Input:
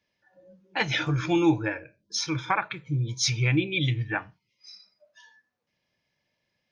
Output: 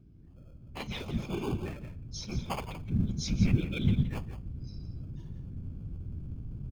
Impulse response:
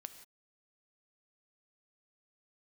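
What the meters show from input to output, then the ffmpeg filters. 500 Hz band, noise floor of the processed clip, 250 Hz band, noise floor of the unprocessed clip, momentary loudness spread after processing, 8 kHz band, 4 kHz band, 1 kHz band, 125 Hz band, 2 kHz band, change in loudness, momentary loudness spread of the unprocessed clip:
-9.0 dB, -53 dBFS, -5.0 dB, -79 dBFS, 15 LU, -12.5 dB, -11.5 dB, -12.0 dB, -2.5 dB, -15.5 dB, -8.0 dB, 10 LU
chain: -filter_complex "[0:a]asplit=2[s0][s1];[1:a]atrim=start_sample=2205[s2];[s1][s2]afir=irnorm=-1:irlink=0,volume=0.422[s3];[s0][s3]amix=inputs=2:normalize=0,aeval=exprs='val(0)+0.01*(sin(2*PI*60*n/s)+sin(2*PI*2*60*n/s)/2+sin(2*PI*3*60*n/s)/3+sin(2*PI*4*60*n/s)/4+sin(2*PI*5*60*n/s)/5)':c=same,bandreject=f=50:t=h:w=6,bandreject=f=100:t=h:w=6,bandreject=f=150:t=h:w=6,asubboost=boost=12:cutoff=140,aecho=1:1:170:0.299,afftfilt=real='hypot(re,im)*cos(2*PI*random(0))':imag='hypot(re,im)*sin(2*PI*random(1))':win_size=512:overlap=0.75,acrossover=split=510|2200[s4][s5][s6];[s5]acrusher=samples=23:mix=1:aa=0.000001[s7];[s4][s7][s6]amix=inputs=3:normalize=0,bass=f=250:g=-5,treble=f=4000:g=-4,volume=0.562"

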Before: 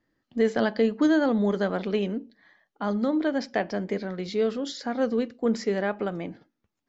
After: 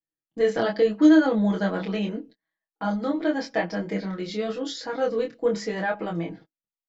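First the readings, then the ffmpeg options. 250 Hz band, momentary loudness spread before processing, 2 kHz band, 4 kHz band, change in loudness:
+2.5 dB, 10 LU, +2.0 dB, +2.0 dB, +2.0 dB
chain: -af "aecho=1:1:6.2:0.93,flanger=delay=22.5:depth=3:speed=0.85,agate=range=0.0398:threshold=0.00398:ratio=16:detection=peak,volume=1.26"

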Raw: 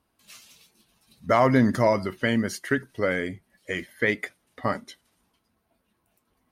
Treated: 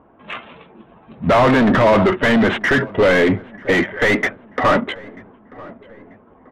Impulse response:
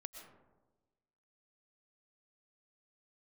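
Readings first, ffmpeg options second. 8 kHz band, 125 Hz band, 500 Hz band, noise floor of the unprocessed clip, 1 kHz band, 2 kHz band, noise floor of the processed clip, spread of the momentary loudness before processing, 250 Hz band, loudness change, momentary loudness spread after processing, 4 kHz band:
+3.0 dB, +7.0 dB, +10.0 dB, -74 dBFS, +9.5 dB, +11.0 dB, -49 dBFS, 15 LU, +9.0 dB, +9.0 dB, 18 LU, +11.5 dB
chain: -filter_complex "[0:a]asplit=2[s0][s1];[s1]acontrast=71,volume=0.794[s2];[s0][s2]amix=inputs=2:normalize=0,apsyclip=7.08,adynamicsmooth=sensitivity=1:basefreq=880,aresample=8000,volume=1.68,asoftclip=hard,volume=0.596,aresample=44100,asplit=2[s3][s4];[s4]highpass=f=720:p=1,volume=8.91,asoftclip=type=tanh:threshold=1[s5];[s3][s5]amix=inputs=2:normalize=0,lowpass=f=1200:p=1,volume=0.501,asplit=2[s6][s7];[s7]adelay=938,lowpass=f=1600:p=1,volume=0.0891,asplit=2[s8][s9];[s9]adelay=938,lowpass=f=1600:p=1,volume=0.53,asplit=2[s10][s11];[s11]adelay=938,lowpass=f=1600:p=1,volume=0.53,asplit=2[s12][s13];[s13]adelay=938,lowpass=f=1600:p=1,volume=0.53[s14];[s6][s8][s10][s12][s14]amix=inputs=5:normalize=0,volume=0.501"

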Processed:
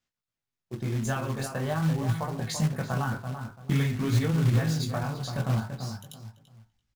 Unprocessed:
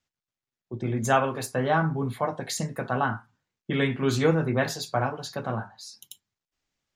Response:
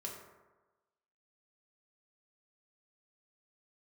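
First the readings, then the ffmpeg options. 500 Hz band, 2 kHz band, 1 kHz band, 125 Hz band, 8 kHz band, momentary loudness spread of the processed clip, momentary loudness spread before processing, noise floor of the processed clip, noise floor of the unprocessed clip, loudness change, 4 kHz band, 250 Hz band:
-8.0 dB, -6.0 dB, -8.0 dB, +4.0 dB, -2.5 dB, 13 LU, 17 LU, under -85 dBFS, under -85 dBFS, -2.0 dB, -2.5 dB, -1.0 dB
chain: -filter_complex "[0:a]acompressor=threshold=0.0562:ratio=12,asubboost=boost=6:cutoff=170,asplit=2[s0][s1];[s1]adelay=337,lowpass=f=1700:p=1,volume=0.447,asplit=2[s2][s3];[s3]adelay=337,lowpass=f=1700:p=1,volume=0.27,asplit=2[s4][s5];[s5]adelay=337,lowpass=f=1700:p=1,volume=0.27[s6];[s2][s4][s6]amix=inputs=3:normalize=0[s7];[s0][s7]amix=inputs=2:normalize=0,flanger=delay=17.5:depth=5.6:speed=0.45,acrusher=bits=4:mode=log:mix=0:aa=0.000001,highshelf=f=10000:g=-4,volume=1.19"

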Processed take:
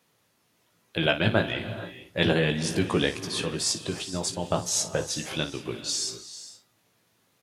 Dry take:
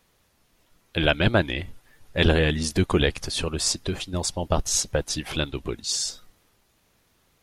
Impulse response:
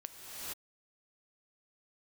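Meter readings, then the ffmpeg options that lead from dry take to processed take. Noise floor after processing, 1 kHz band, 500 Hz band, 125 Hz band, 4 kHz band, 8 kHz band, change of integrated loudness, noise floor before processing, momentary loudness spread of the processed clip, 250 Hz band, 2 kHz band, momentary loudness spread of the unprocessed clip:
-69 dBFS, -2.0 dB, -2.0 dB, -4.5 dB, -2.0 dB, -2.0 dB, -2.5 dB, -66 dBFS, 12 LU, -2.0 dB, -2.0 dB, 9 LU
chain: -filter_complex "[0:a]highpass=f=100:w=0.5412,highpass=f=100:w=1.3066,aecho=1:1:18|57:0.473|0.237,asplit=2[s0][s1];[1:a]atrim=start_sample=2205[s2];[s1][s2]afir=irnorm=-1:irlink=0,volume=0.376[s3];[s0][s3]amix=inputs=2:normalize=0,volume=0.562"

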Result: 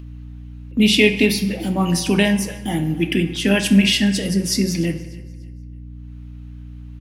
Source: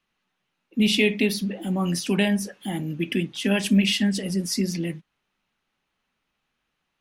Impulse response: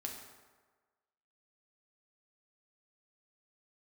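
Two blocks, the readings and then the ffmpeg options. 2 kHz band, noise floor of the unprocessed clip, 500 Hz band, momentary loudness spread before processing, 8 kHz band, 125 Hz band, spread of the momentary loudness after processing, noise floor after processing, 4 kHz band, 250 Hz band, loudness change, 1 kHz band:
+6.5 dB, -78 dBFS, +6.0 dB, 11 LU, +6.5 dB, +6.5 dB, 24 LU, -36 dBFS, +6.0 dB, +5.5 dB, +6.0 dB, +7.0 dB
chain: -filter_complex "[0:a]agate=range=0.0178:threshold=0.00891:ratio=16:detection=peak,acompressor=mode=upward:threshold=0.0126:ratio=2.5,aeval=exprs='val(0)+0.01*(sin(2*PI*60*n/s)+sin(2*PI*2*60*n/s)/2+sin(2*PI*3*60*n/s)/3+sin(2*PI*4*60*n/s)/4+sin(2*PI*5*60*n/s)/5)':c=same,aecho=1:1:295|590|885:0.0891|0.0303|0.0103,asplit=2[s0][s1];[1:a]atrim=start_sample=2205,asetrate=52920,aresample=44100[s2];[s1][s2]afir=irnorm=-1:irlink=0,volume=1.26[s3];[s0][s3]amix=inputs=2:normalize=0,volume=1.19"

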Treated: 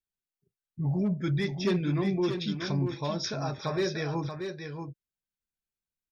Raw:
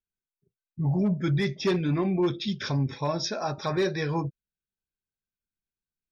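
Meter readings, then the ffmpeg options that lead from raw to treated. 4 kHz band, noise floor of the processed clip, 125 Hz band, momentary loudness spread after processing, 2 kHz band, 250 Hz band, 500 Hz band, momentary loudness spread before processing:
-2.0 dB, under -85 dBFS, -2.0 dB, 11 LU, -2.5 dB, -2.0 dB, -2.5 dB, 6 LU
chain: -filter_complex "[0:a]equalizer=f=850:w=1.5:g=-2.5,asplit=2[s0][s1];[s1]aecho=0:1:633:0.447[s2];[s0][s2]amix=inputs=2:normalize=0,volume=0.708"

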